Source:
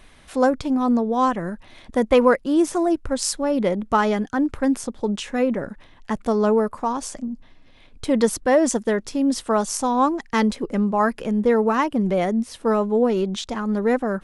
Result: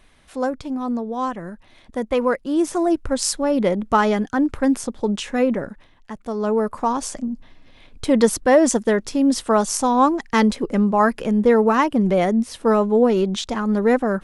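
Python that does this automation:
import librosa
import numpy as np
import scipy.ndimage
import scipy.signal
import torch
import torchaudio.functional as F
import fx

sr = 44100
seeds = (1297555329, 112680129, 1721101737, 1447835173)

y = fx.gain(x, sr, db=fx.line((2.15, -5.0), (2.96, 2.0), (5.55, 2.0), (6.16, -9.0), (6.78, 3.0)))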